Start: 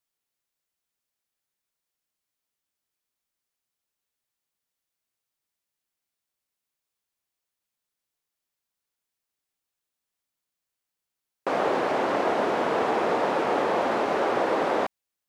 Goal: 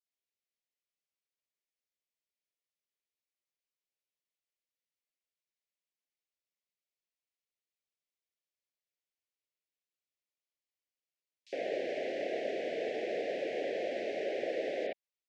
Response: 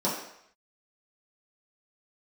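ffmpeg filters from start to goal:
-filter_complex "[0:a]asuperstop=centerf=1100:order=8:qfactor=0.9,acrossover=split=380 6400:gain=0.2 1 0.0794[a][b][c];[a][b][c]amix=inputs=3:normalize=0,acrossover=split=3900[d][e];[d]adelay=60[f];[f][e]amix=inputs=2:normalize=0,volume=-6dB"

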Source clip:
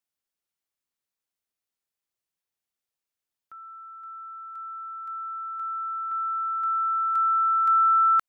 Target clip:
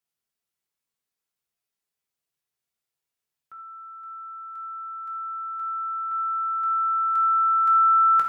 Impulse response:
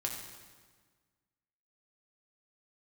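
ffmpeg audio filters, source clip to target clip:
-filter_complex "[1:a]atrim=start_sample=2205,afade=t=out:st=0.17:d=0.01,atrim=end_sample=7938,asetrate=52920,aresample=44100[a];[0:a][a]afir=irnorm=-1:irlink=0,volume=2dB"

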